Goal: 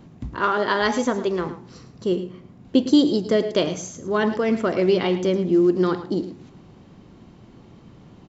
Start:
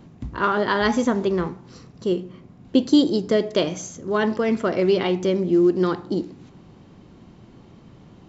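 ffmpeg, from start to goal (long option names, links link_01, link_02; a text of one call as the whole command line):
ffmpeg -i in.wav -filter_complex "[0:a]asettb=1/sr,asplit=3[link_01][link_02][link_03];[link_01]atrim=end=0.404[link_04];[link_02]atrim=start=0.4:end=1.47,asetpts=PTS-STARTPTS,afade=type=in:duration=0.004:curve=qsin,afade=type=out:start_time=1.066:duration=0.004:curve=qsin,bass=frequency=250:gain=-7,treble=frequency=4000:gain=2[link_05];[link_03]atrim=start=1.466[link_06];[link_04][link_05]acrossfade=duration=0.004:curve1=hsin:curve2=qsin[link_07];[link_07][link_06]acrossfade=duration=0.004:curve1=qsin:curve2=hsin,aecho=1:1:108:0.224" out.wav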